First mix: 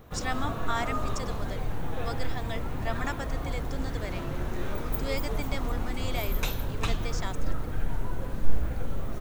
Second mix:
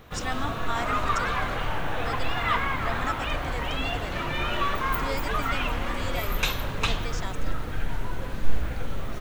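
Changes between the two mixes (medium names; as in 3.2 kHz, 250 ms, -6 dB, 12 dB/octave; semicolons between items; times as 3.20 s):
first sound: add peaking EQ 2.8 kHz +9 dB 2.6 oct; second sound: unmuted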